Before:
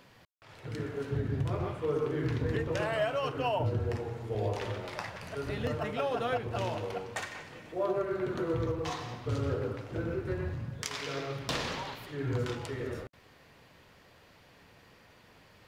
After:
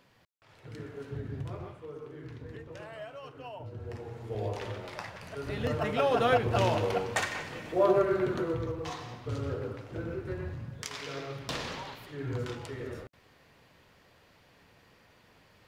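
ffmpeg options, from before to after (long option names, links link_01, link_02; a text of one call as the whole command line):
ffmpeg -i in.wav -af "volume=14dB,afade=type=out:start_time=1.45:duration=0.45:silence=0.446684,afade=type=in:start_time=3.71:duration=0.58:silence=0.281838,afade=type=in:start_time=5.4:duration=0.91:silence=0.354813,afade=type=out:start_time=7.96:duration=0.64:silence=0.334965" out.wav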